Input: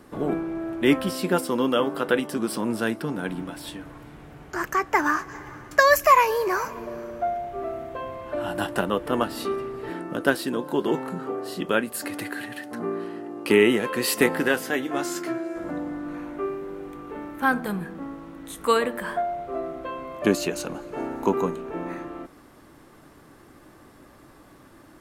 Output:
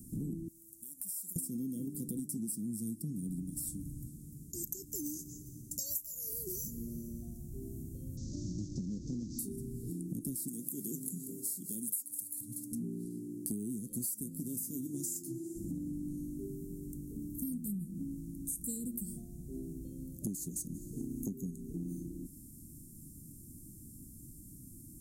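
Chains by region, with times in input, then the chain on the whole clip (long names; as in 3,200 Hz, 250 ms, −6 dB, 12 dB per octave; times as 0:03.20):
0:00.48–0:01.36: first-order pre-emphasis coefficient 0.97 + downward compressor 12 to 1, threshold −43 dBFS
0:04.07–0:06.33: low-shelf EQ 160 Hz −11 dB + single-tap delay 194 ms −23 dB
0:08.17–0:09.39: linear delta modulator 32 kbit/s, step −26.5 dBFS + Butterworth band-reject 1,700 Hz, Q 0.73 + high-frequency loss of the air 71 metres
0:10.48–0:12.41: spectral tilt +3 dB per octave + mains-hum notches 50/100/150 Hz + single-tap delay 186 ms −15 dB
whole clip: inverse Chebyshev band-stop filter 880–2,200 Hz, stop band 80 dB; bass and treble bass +1 dB, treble +8 dB; downward compressor 12 to 1, threshold −38 dBFS; level +3 dB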